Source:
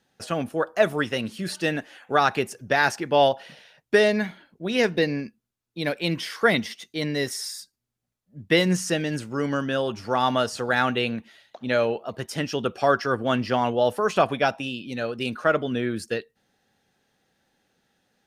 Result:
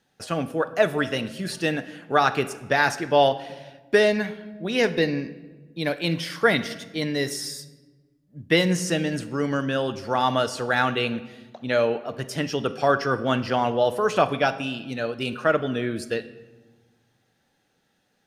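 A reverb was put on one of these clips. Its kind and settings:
rectangular room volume 830 cubic metres, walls mixed, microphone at 0.41 metres

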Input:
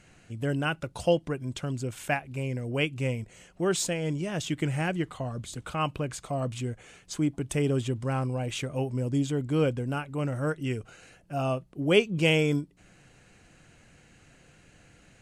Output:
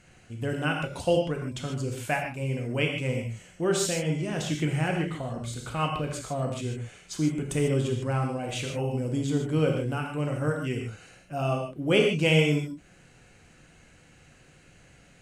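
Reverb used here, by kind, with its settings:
reverb whose tail is shaped and stops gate 170 ms flat, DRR 1 dB
level −1 dB

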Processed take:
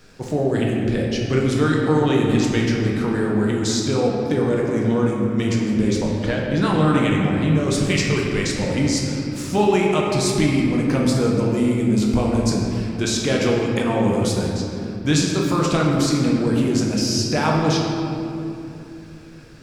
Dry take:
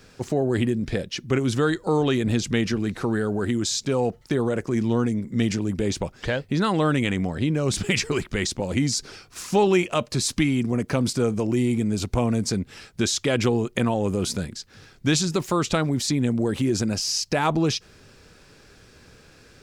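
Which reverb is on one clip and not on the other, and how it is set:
rectangular room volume 120 cubic metres, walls hard, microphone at 0.53 metres
level −1 dB

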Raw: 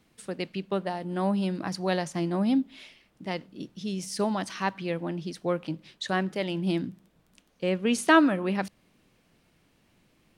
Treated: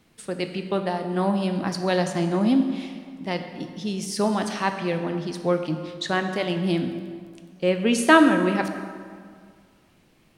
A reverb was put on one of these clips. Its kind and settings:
dense smooth reverb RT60 2 s, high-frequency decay 0.65×, DRR 6 dB
level +4 dB

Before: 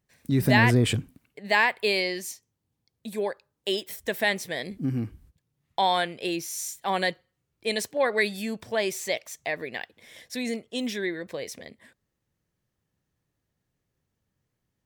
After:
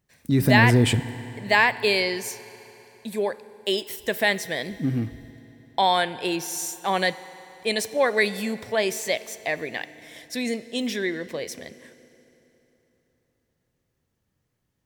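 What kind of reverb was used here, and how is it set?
feedback delay network reverb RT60 3.5 s, high-frequency decay 0.8×, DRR 15 dB
level +3 dB

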